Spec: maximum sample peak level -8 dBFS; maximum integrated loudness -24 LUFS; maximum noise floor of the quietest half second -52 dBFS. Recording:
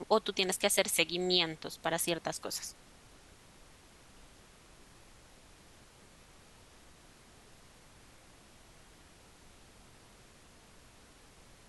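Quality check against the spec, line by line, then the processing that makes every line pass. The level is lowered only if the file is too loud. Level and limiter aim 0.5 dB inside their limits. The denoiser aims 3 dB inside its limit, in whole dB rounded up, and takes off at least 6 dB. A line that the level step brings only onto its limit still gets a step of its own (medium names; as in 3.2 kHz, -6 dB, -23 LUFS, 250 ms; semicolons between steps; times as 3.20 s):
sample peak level -11.0 dBFS: pass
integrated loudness -31.5 LUFS: pass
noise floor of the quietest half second -58 dBFS: pass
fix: none needed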